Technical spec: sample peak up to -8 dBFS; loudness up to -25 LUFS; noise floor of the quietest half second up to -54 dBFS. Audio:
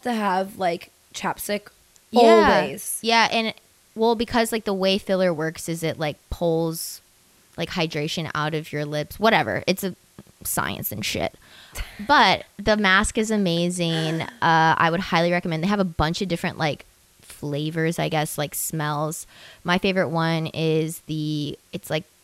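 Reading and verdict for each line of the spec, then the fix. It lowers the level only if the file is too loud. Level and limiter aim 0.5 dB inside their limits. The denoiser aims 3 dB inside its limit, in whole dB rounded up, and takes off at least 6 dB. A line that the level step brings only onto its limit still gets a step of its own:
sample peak -5.0 dBFS: fail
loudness -22.5 LUFS: fail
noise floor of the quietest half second -57 dBFS: pass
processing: trim -3 dB; peak limiter -8.5 dBFS

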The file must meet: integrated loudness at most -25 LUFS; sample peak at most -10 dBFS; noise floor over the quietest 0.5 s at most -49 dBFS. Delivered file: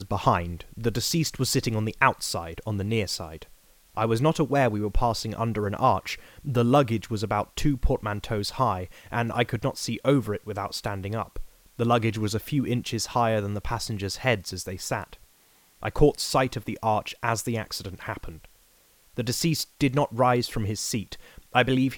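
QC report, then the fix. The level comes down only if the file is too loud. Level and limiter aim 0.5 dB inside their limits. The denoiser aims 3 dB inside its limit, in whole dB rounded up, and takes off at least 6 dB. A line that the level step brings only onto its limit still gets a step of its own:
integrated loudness -26.5 LUFS: pass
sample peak -4.0 dBFS: fail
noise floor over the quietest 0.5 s -60 dBFS: pass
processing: peak limiter -10.5 dBFS

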